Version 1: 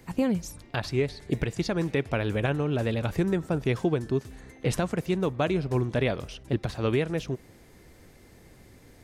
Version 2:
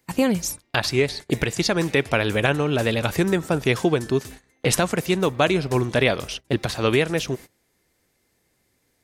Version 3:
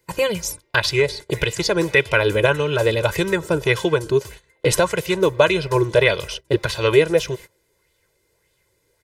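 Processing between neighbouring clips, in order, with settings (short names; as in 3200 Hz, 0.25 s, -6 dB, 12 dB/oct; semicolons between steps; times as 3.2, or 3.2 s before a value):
gate -41 dBFS, range -22 dB; tilt +2 dB/oct; gain +8.5 dB
comb 2 ms, depth 98%; LFO bell 1.7 Hz 260–3500 Hz +8 dB; gain -2 dB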